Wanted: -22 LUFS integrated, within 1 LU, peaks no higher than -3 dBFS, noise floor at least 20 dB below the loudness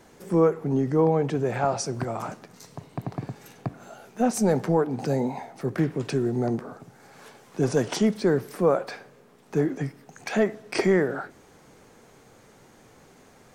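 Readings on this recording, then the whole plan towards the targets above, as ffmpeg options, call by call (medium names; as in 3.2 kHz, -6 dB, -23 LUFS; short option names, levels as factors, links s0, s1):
loudness -25.5 LUFS; peak level -11.0 dBFS; loudness target -22.0 LUFS
-> -af "volume=1.5"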